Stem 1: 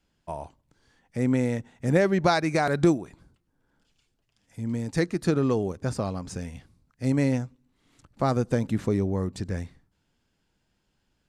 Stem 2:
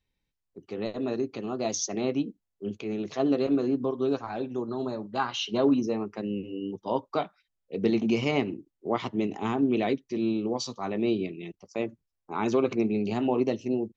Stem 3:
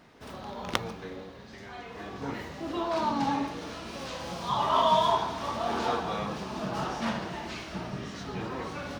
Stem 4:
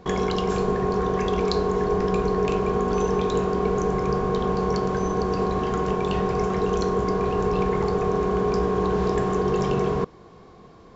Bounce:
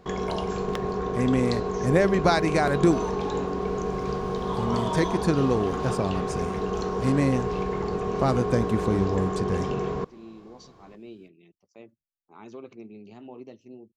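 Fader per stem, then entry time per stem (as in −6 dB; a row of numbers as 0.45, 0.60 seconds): +0.5, −17.5, −9.0, −5.5 decibels; 0.00, 0.00, 0.00, 0.00 seconds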